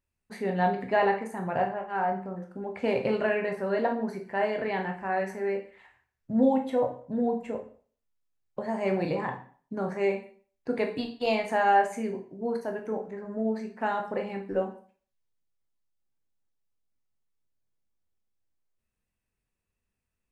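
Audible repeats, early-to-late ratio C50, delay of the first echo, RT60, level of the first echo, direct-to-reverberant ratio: none, 9.5 dB, none, 0.45 s, none, 2.5 dB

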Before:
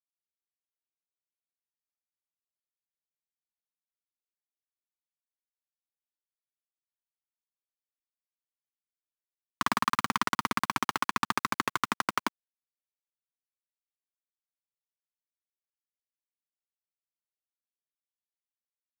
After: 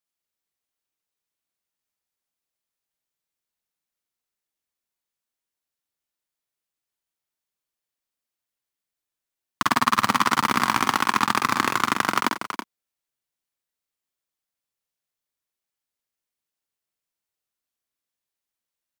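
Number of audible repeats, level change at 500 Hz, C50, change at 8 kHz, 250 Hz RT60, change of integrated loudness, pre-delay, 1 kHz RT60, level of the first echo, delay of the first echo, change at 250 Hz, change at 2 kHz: 4, +8.5 dB, none, +8.5 dB, none, +8.0 dB, none, none, -5.0 dB, 46 ms, +8.5 dB, +8.5 dB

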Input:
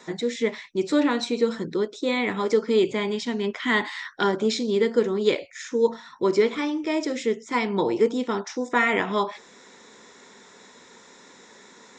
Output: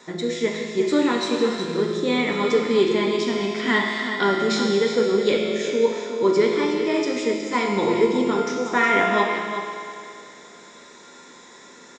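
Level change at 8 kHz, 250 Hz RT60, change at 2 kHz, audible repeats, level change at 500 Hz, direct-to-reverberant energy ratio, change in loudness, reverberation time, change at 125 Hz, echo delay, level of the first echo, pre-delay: +3.5 dB, 2.7 s, +3.5 dB, 1, +3.0 dB, -1.5 dB, +3.0 dB, 2.7 s, +4.0 dB, 0.366 s, -9.0 dB, 6 ms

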